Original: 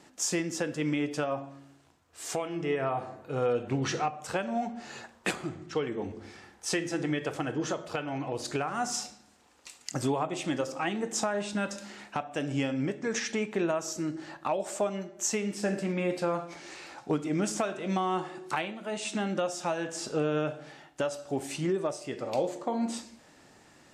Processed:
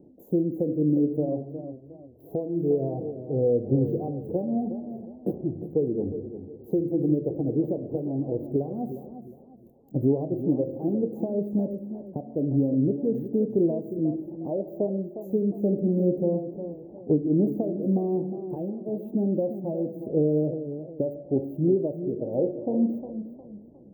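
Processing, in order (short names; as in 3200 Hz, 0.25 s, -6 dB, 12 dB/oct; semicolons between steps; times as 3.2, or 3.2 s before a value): Wiener smoothing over 9 samples; inverse Chebyshev band-stop 1200–8800 Hz, stop band 50 dB; warbling echo 0.357 s, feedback 33%, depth 97 cents, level -11 dB; gain +7.5 dB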